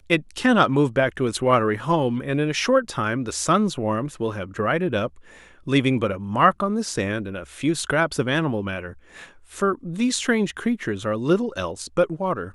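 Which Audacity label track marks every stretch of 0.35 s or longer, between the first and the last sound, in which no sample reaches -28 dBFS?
5.070000	5.670000	silence
8.900000	9.570000	silence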